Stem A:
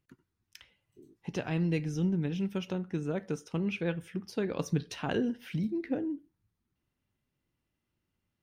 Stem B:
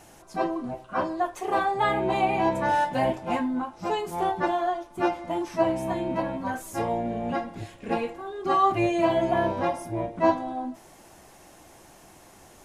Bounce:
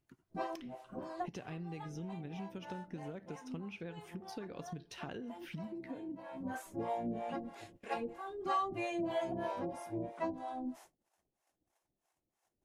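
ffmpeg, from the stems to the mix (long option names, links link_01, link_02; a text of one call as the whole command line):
ffmpeg -i stem1.wav -i stem2.wav -filter_complex "[0:a]acompressor=threshold=-37dB:ratio=12,volume=-4dB,asplit=2[link_01][link_02];[1:a]acrossover=split=130|4100[link_03][link_04][link_05];[link_03]acompressor=threshold=-54dB:ratio=4[link_06];[link_04]acompressor=threshold=-24dB:ratio=4[link_07];[link_05]acompressor=threshold=-51dB:ratio=4[link_08];[link_06][link_07][link_08]amix=inputs=3:normalize=0,agate=range=-27dB:threshold=-47dB:ratio=16:detection=peak,acrossover=split=490[link_09][link_10];[link_09]aeval=exprs='val(0)*(1-1/2+1/2*cos(2*PI*3.1*n/s))':channel_layout=same[link_11];[link_10]aeval=exprs='val(0)*(1-1/2-1/2*cos(2*PI*3.1*n/s))':channel_layout=same[link_12];[link_11][link_12]amix=inputs=2:normalize=0,volume=-4dB[link_13];[link_02]apad=whole_len=557857[link_14];[link_13][link_14]sidechaincompress=threshold=-57dB:ratio=10:attack=8.8:release=314[link_15];[link_01][link_15]amix=inputs=2:normalize=0" out.wav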